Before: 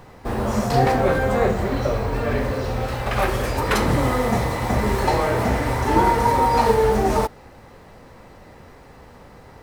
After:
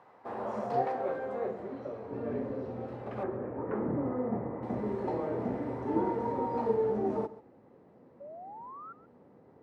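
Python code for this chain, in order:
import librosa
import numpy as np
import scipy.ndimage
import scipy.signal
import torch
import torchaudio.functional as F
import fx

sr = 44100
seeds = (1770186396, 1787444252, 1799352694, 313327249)

p1 = fx.low_shelf(x, sr, hz=190.0, db=3.0)
p2 = fx.filter_sweep_bandpass(p1, sr, from_hz=920.0, to_hz=320.0, start_s=0.08, end_s=1.74, q=1.1)
p3 = fx.low_shelf(p2, sr, hz=440.0, db=-10.0, at=(0.82, 2.11))
p4 = fx.lowpass(p3, sr, hz=1900.0, slope=24, at=(3.23, 4.63))
p5 = fx.spec_paint(p4, sr, seeds[0], shape='rise', start_s=8.2, length_s=0.73, low_hz=550.0, high_hz=1400.0, level_db=-37.0)
p6 = scipy.signal.sosfilt(scipy.signal.butter(2, 110.0, 'highpass', fs=sr, output='sos'), p5)
p7 = p6 + fx.echo_single(p6, sr, ms=135, db=-17.0, dry=0)
y = p7 * 10.0 ** (-8.5 / 20.0)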